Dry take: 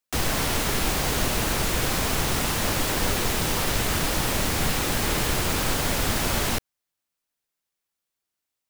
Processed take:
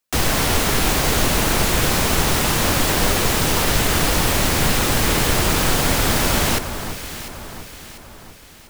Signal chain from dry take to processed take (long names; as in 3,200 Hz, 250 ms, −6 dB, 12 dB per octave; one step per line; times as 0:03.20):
delay that swaps between a low-pass and a high-pass 348 ms, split 1,600 Hz, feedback 68%, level −8.5 dB
level +6 dB